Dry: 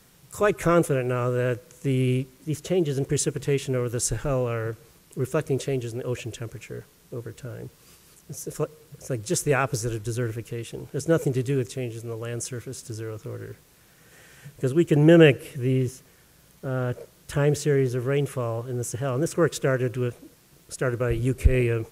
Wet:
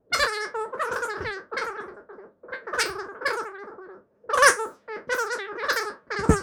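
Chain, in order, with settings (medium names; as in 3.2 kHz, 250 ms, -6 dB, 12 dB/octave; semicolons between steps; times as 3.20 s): spectral sustain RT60 0.95 s; elliptic low-pass 9.2 kHz; Chebyshev shaper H 7 -23 dB, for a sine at -2.5 dBFS; wide varispeed 3.41×; level-controlled noise filter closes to 500 Hz, open at -22 dBFS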